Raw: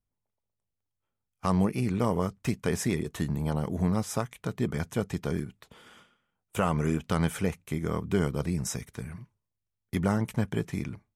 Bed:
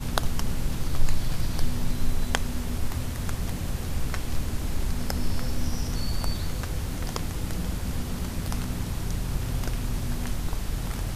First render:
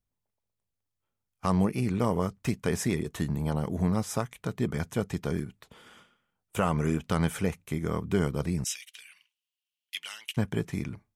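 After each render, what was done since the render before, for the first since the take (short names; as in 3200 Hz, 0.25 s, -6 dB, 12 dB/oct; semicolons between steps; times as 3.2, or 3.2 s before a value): 8.64–10.37 resonant high-pass 2900 Hz, resonance Q 6.6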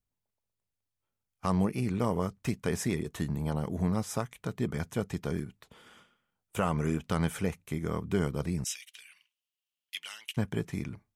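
gain -2.5 dB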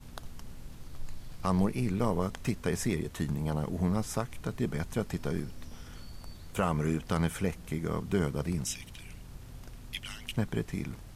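add bed -18 dB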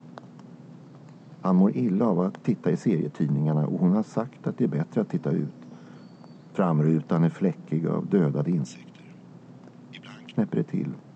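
Chebyshev band-pass 140–7500 Hz, order 5; tilt shelf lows +9.5 dB, about 1400 Hz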